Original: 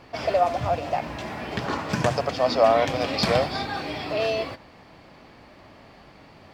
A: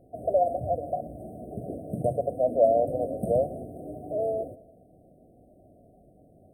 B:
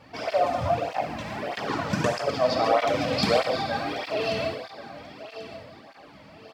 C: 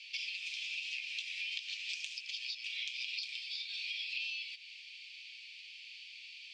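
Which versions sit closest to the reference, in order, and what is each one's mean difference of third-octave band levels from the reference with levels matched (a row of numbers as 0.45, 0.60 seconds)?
B, A, C; 3.5, 11.5, 21.0 decibels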